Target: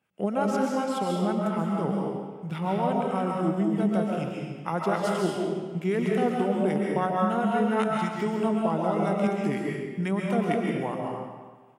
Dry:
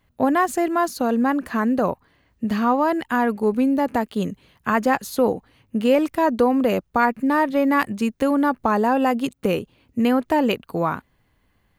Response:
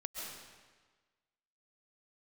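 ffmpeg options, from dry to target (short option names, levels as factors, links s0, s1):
-filter_complex "[0:a]acrossover=split=1000[s0][s1];[s0]aeval=exprs='val(0)*(1-0.5/2+0.5/2*cos(2*PI*8*n/s))':c=same[s2];[s1]aeval=exprs='val(0)*(1-0.5/2-0.5/2*cos(2*PI*8*n/s))':c=same[s3];[s2][s3]amix=inputs=2:normalize=0,highpass=f=170:w=0.5412,highpass=f=170:w=1.3066,equalizer=f=3600:t=o:w=0.35:g=9.5,asetrate=34006,aresample=44100,atempo=1.29684[s4];[1:a]atrim=start_sample=2205[s5];[s4][s5]afir=irnorm=-1:irlink=0,volume=0.708"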